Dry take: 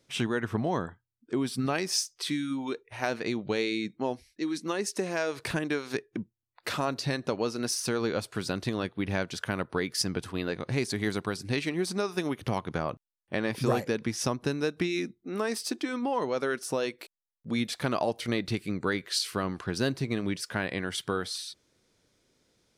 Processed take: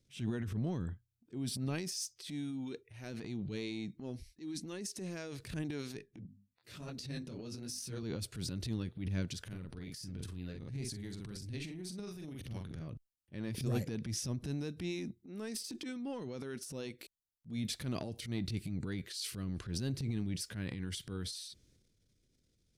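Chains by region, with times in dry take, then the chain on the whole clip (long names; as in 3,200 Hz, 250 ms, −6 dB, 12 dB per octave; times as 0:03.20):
0:05.98–0:08.03: mains-hum notches 50/100/150/200/250 Hz + micro pitch shift up and down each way 39 cents
0:09.40–0:12.88: downward compressor 4 to 1, threshold −34 dBFS + double-tracking delay 44 ms −6 dB
whole clip: guitar amp tone stack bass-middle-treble 10-0-1; transient designer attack −8 dB, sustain +9 dB; level +10.5 dB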